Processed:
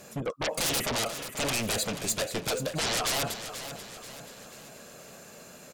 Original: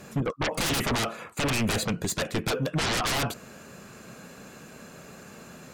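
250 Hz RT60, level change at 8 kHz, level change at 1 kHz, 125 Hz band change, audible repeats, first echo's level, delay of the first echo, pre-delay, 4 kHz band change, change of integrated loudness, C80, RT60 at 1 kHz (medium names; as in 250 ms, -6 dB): no reverb, +2.5 dB, -3.0 dB, -7.5 dB, 4, -11.0 dB, 485 ms, no reverb, 0.0 dB, -2.0 dB, no reverb, no reverb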